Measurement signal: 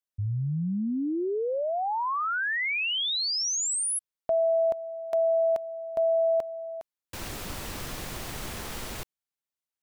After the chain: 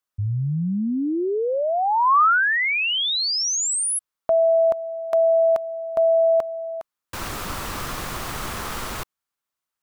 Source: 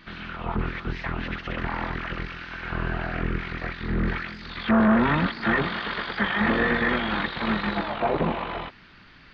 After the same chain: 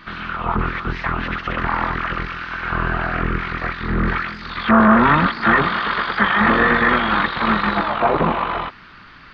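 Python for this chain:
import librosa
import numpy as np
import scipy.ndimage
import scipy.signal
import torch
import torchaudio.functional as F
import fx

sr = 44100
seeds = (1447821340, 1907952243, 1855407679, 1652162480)

y = fx.peak_eq(x, sr, hz=1200.0, db=8.5, octaves=0.79)
y = y * librosa.db_to_amplitude(5.0)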